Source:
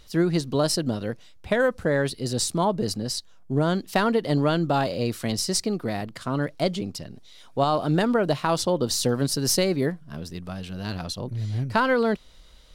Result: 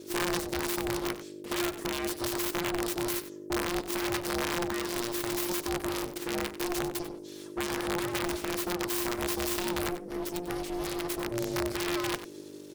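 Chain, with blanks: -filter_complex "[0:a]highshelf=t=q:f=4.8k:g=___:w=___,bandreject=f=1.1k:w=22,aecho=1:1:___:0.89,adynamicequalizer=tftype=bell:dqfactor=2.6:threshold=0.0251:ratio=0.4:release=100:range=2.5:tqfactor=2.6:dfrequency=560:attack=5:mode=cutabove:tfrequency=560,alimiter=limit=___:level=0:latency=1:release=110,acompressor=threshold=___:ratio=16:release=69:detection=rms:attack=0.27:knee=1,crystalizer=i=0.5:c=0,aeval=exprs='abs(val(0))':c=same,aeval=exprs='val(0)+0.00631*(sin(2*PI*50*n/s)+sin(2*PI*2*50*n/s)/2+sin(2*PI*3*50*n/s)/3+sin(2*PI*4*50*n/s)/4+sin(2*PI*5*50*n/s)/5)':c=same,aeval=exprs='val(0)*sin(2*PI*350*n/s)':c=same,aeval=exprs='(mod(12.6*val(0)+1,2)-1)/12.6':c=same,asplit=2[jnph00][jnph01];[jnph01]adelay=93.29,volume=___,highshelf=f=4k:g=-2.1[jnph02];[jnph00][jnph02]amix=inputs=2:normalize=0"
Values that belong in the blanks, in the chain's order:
6, 1.5, 6, -9dB, -22dB, -12dB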